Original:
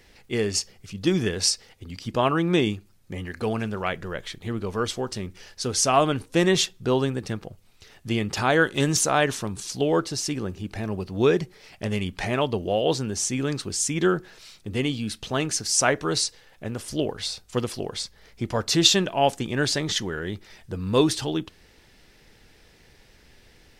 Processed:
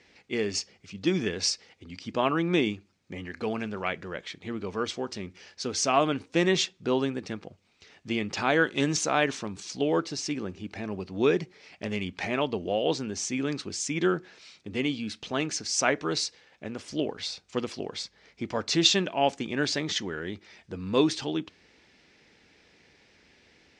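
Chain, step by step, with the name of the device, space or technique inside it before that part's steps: car door speaker (cabinet simulation 100–6900 Hz, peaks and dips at 120 Hz -8 dB, 280 Hz +3 dB, 2.3 kHz +5 dB); trim -4 dB

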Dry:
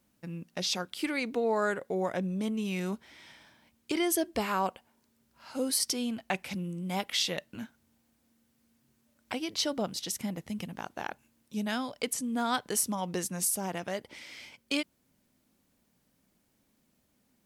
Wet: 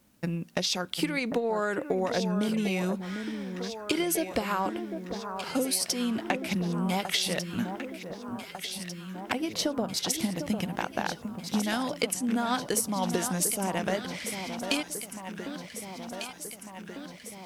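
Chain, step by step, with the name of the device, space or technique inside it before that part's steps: 9.32–9.94 s: peaking EQ 4.3 kHz -9 dB 2.3 oct; drum-bus smash (transient shaper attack +7 dB, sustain +3 dB; compression, threshold -31 dBFS, peak gain reduction 11.5 dB; saturation -19.5 dBFS, distortion -25 dB); echo whose repeats swap between lows and highs 749 ms, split 1.4 kHz, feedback 80%, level -7.5 dB; trim +6.5 dB

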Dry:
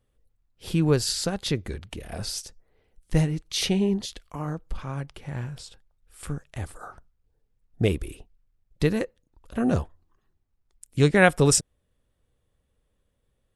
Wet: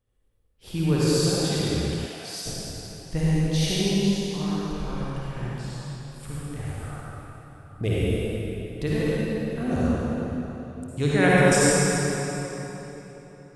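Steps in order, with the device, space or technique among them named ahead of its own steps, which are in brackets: tunnel (flutter echo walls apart 9.5 m, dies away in 0.29 s; reverberation RT60 3.8 s, pre-delay 49 ms, DRR -8 dB); 2.05–2.45 s: high-pass 520 Hz -> 1.2 kHz 6 dB/octave; trim -7 dB

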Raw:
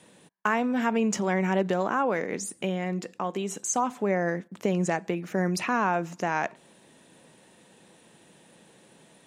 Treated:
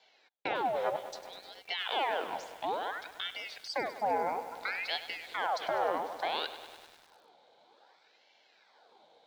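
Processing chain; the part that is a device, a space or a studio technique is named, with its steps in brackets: 0.96–1.68 s: pre-emphasis filter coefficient 0.97; voice changer toy (ring modulator with a swept carrier 1.4 kHz, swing 80%, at 0.6 Hz; cabinet simulation 460–4400 Hz, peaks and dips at 470 Hz +4 dB, 780 Hz +6 dB, 1.2 kHz -10 dB, 1.9 kHz -9 dB, 2.7 kHz -10 dB, 3.9 kHz +5 dB); bit-crushed delay 100 ms, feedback 80%, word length 8-bit, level -13 dB; trim -1 dB

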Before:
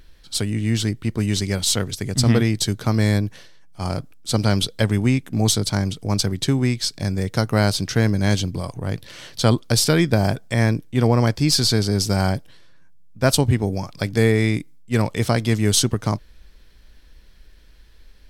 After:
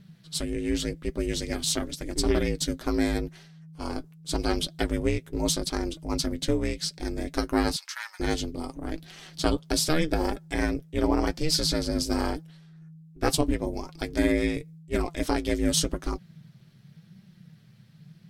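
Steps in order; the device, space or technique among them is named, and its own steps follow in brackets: alien voice (ring modulator 160 Hz; flange 0.87 Hz, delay 4.9 ms, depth 3.2 ms, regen +48%); 7.76–8.20 s: Chebyshev high-pass 920 Hz, order 5

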